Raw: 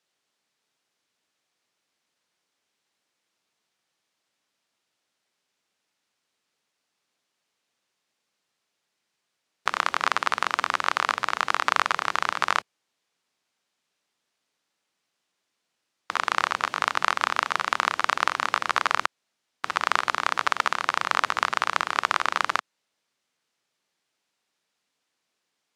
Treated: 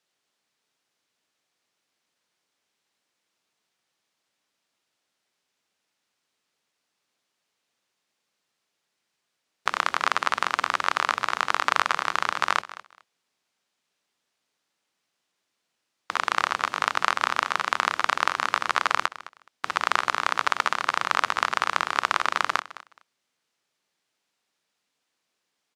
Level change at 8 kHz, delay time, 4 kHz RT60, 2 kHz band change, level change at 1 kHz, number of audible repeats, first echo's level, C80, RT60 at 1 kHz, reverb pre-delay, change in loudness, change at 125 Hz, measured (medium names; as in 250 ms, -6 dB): 0.0 dB, 211 ms, no reverb, 0.0 dB, 0.0 dB, 2, -17.0 dB, no reverb, no reverb, no reverb, 0.0 dB, 0.0 dB